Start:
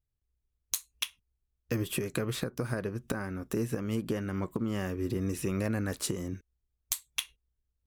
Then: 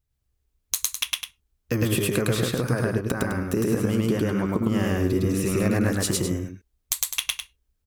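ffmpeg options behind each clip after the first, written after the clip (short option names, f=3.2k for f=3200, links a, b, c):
-af "aecho=1:1:107.9|207:1|0.398,volume=6dB"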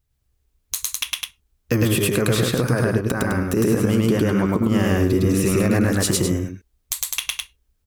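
-af "alimiter=level_in=13dB:limit=-1dB:release=50:level=0:latency=1,volume=-7.5dB"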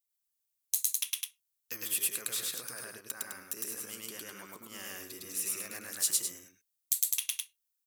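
-af "aderivative,volume=-5.5dB"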